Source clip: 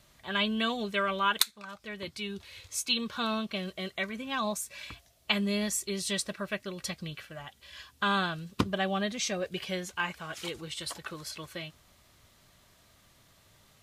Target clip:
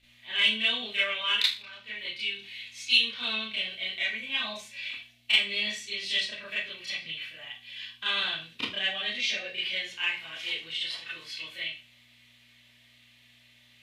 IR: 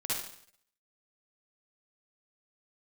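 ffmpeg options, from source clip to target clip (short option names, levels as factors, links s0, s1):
-filter_complex "[0:a]highpass=f=390:p=1,acrossover=split=680|3100[s0][s1][s2];[s1]aexciter=amount=8.1:drive=8.7:freq=2000[s3];[s2]acompressor=threshold=0.00398:ratio=6[s4];[s0][s3][s4]amix=inputs=3:normalize=0,aeval=exprs='val(0)+0.002*(sin(2*PI*60*n/s)+sin(2*PI*2*60*n/s)/2+sin(2*PI*3*60*n/s)/3+sin(2*PI*4*60*n/s)/4+sin(2*PI*5*60*n/s)/5)':c=same[s5];[1:a]atrim=start_sample=2205,asetrate=83790,aresample=44100[s6];[s5][s6]afir=irnorm=-1:irlink=0,volume=0.501"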